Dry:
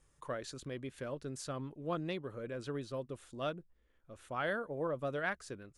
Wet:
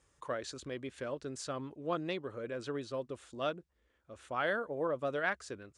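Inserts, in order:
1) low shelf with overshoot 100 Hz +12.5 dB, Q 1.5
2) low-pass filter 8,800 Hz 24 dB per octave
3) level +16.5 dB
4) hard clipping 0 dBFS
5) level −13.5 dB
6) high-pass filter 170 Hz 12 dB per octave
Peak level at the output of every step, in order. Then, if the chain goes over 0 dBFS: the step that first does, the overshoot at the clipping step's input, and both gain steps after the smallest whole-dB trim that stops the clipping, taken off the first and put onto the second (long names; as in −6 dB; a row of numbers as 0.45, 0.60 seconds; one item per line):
−22.0, −22.0, −5.5, −5.5, −19.0, −18.0 dBFS
no step passes full scale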